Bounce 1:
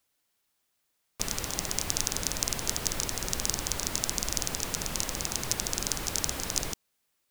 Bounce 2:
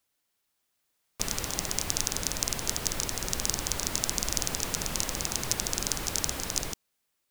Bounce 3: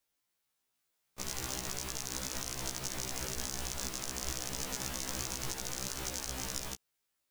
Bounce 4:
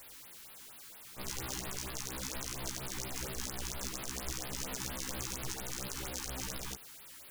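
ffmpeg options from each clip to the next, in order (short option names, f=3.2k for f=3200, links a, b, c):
-af "dynaudnorm=f=140:g=13:m=11.5dB,volume=-2dB"
-af "alimiter=limit=-10.5dB:level=0:latency=1:release=87,afftfilt=real='re*1.73*eq(mod(b,3),0)':imag='im*1.73*eq(mod(b,3),0)':win_size=2048:overlap=0.75,volume=-2dB"
-af "aeval=exprs='val(0)+0.5*0.0075*sgn(val(0))':c=same,afftfilt=real='re*(1-between(b*sr/1024,520*pow(7400/520,0.5+0.5*sin(2*PI*4.3*pts/sr))/1.41,520*pow(7400/520,0.5+0.5*sin(2*PI*4.3*pts/sr))*1.41))':imag='im*(1-between(b*sr/1024,520*pow(7400/520,0.5+0.5*sin(2*PI*4.3*pts/sr))/1.41,520*pow(7400/520,0.5+0.5*sin(2*PI*4.3*pts/sr))*1.41))':win_size=1024:overlap=0.75,volume=-2.5dB"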